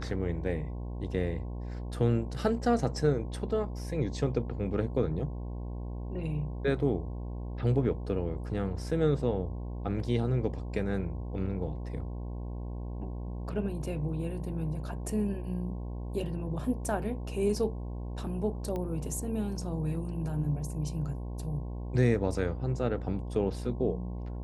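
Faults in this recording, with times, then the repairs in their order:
buzz 60 Hz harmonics 18 -37 dBFS
18.76 s: pop -24 dBFS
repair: de-click; de-hum 60 Hz, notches 18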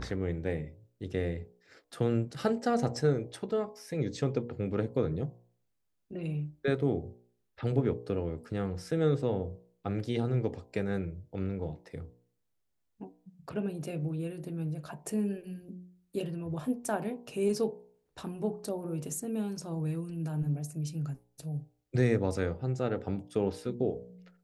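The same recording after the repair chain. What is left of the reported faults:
nothing left

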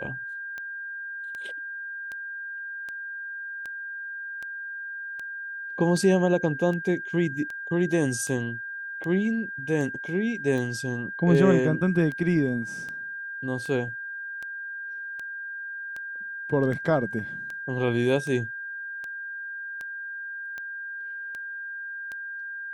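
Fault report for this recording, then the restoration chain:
tick 78 rpm -23 dBFS
whine 1.6 kHz -33 dBFS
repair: de-click; band-stop 1.6 kHz, Q 30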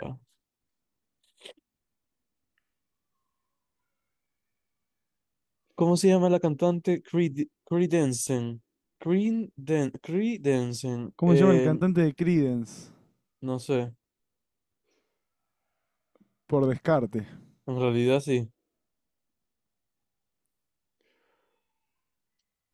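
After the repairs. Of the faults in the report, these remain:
nothing left

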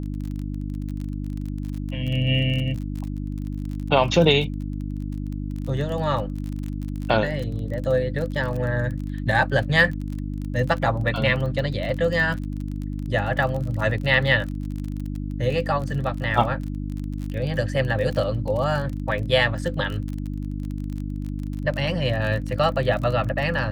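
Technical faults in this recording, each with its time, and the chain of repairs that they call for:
crackle 31 per s -29 dBFS
hum 50 Hz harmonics 6 -29 dBFS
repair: de-click; de-hum 50 Hz, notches 6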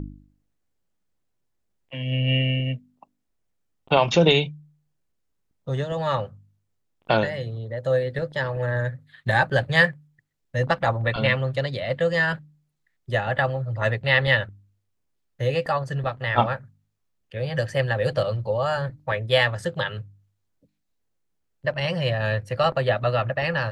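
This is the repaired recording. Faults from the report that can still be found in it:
nothing left

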